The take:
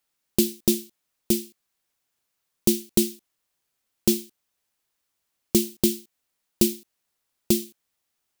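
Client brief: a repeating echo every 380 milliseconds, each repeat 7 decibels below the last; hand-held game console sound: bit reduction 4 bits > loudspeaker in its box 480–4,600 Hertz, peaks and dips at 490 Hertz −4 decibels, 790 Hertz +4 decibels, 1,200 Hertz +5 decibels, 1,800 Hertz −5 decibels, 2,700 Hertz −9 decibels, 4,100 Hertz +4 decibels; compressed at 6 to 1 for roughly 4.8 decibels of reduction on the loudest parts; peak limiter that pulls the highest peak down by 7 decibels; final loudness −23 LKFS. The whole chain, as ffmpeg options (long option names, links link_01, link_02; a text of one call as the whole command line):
ffmpeg -i in.wav -af "acompressor=threshold=-20dB:ratio=6,alimiter=limit=-11.5dB:level=0:latency=1,aecho=1:1:380|760|1140|1520|1900:0.447|0.201|0.0905|0.0407|0.0183,acrusher=bits=3:mix=0:aa=0.000001,highpass=480,equalizer=frequency=490:width_type=q:width=4:gain=-4,equalizer=frequency=790:width_type=q:width=4:gain=4,equalizer=frequency=1200:width_type=q:width=4:gain=5,equalizer=frequency=1800:width_type=q:width=4:gain=-5,equalizer=frequency=2700:width_type=q:width=4:gain=-9,equalizer=frequency=4100:width_type=q:width=4:gain=4,lowpass=frequency=4600:width=0.5412,lowpass=frequency=4600:width=1.3066,volume=17dB" out.wav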